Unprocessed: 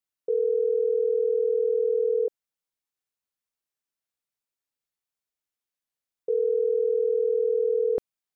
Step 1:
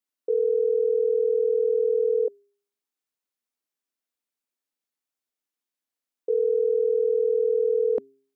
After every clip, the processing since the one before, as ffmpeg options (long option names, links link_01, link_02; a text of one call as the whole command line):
ffmpeg -i in.wav -af "lowshelf=frequency=190:width_type=q:width=3:gain=-7,bandreject=frequency=135:width_type=h:width=4,bandreject=frequency=270:width_type=h:width=4,bandreject=frequency=405:width_type=h:width=4" out.wav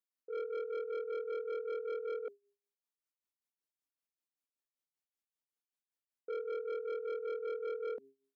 ffmpeg -i in.wav -af "tremolo=f=5.2:d=0.8,asoftclip=type=tanh:threshold=-28.5dB,volume=-6.5dB" out.wav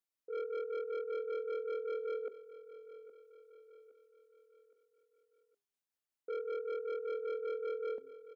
ffmpeg -i in.wav -af "aecho=1:1:816|1632|2448|3264:0.168|0.0789|0.0371|0.0174" out.wav